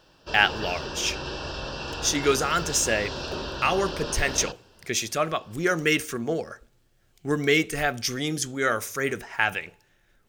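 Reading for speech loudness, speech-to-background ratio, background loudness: −25.5 LKFS, 8.0 dB, −33.5 LKFS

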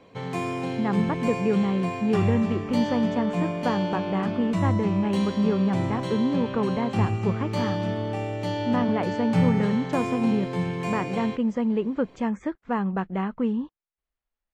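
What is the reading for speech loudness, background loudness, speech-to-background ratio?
−27.0 LKFS, −28.5 LKFS, 1.5 dB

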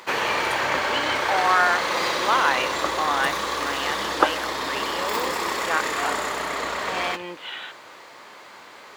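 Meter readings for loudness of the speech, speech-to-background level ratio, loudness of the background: −27.0 LKFS, −2.5 dB, −24.5 LKFS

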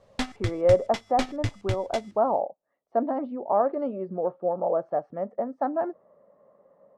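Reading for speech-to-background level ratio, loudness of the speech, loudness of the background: 6.5 dB, −27.5 LKFS, −34.0 LKFS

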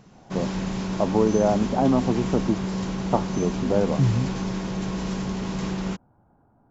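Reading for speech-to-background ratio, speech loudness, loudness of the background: 4.5 dB, −24.5 LKFS, −29.0 LKFS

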